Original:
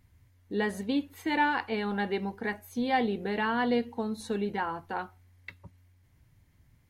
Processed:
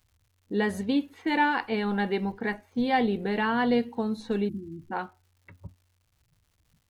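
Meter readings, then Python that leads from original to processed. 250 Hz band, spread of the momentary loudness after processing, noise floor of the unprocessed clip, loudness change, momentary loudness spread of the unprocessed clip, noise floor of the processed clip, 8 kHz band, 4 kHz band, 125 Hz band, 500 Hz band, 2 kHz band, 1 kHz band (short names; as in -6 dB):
+4.0 dB, 11 LU, -64 dBFS, +3.0 dB, 10 LU, -71 dBFS, n/a, +2.0 dB, +4.5 dB, +2.5 dB, +2.0 dB, +1.5 dB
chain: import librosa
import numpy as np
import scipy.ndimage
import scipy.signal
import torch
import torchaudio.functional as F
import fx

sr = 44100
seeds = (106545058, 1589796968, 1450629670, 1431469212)

y = fx.spec_erase(x, sr, start_s=4.49, length_s=0.43, low_hz=380.0, high_hz=8200.0)
y = fx.noise_reduce_blind(y, sr, reduce_db=17)
y = fx.env_lowpass(y, sr, base_hz=640.0, full_db=-28.0)
y = fx.low_shelf(y, sr, hz=110.0, db=10.5)
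y = fx.dmg_crackle(y, sr, seeds[0], per_s=260.0, level_db=-58.0)
y = y * librosa.db_to_amplitude(2.0)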